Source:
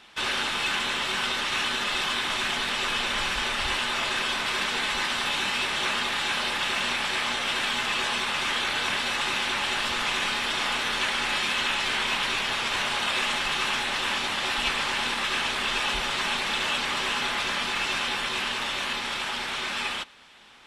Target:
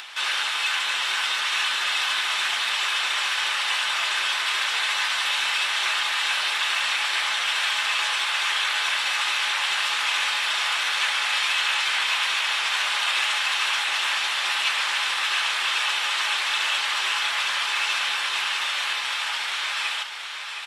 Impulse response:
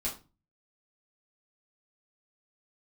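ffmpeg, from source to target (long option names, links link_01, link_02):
-filter_complex "[0:a]highpass=1000,asplit=2[link_01][link_02];[link_02]aecho=0:1:716|1432|2148|2864|3580:0.398|0.183|0.0842|0.0388|0.0178[link_03];[link_01][link_03]amix=inputs=2:normalize=0,acompressor=mode=upward:threshold=-33dB:ratio=2.5,volume=3dB"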